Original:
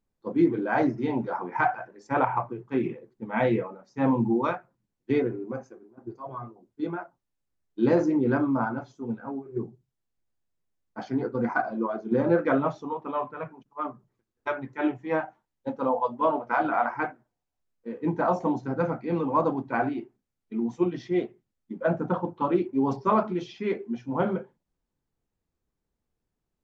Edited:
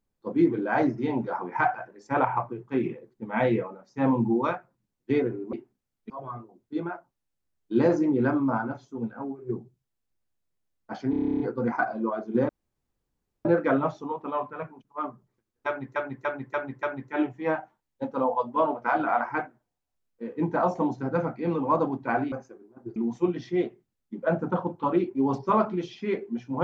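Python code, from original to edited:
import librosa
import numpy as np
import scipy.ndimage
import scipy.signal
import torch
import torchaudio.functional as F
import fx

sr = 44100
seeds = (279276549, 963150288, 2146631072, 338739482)

y = fx.edit(x, sr, fx.swap(start_s=5.53, length_s=0.64, other_s=19.97, other_length_s=0.57),
    fx.stutter(start_s=11.17, slice_s=0.03, count=11),
    fx.insert_room_tone(at_s=12.26, length_s=0.96),
    fx.repeat(start_s=14.48, length_s=0.29, count=5), tone=tone)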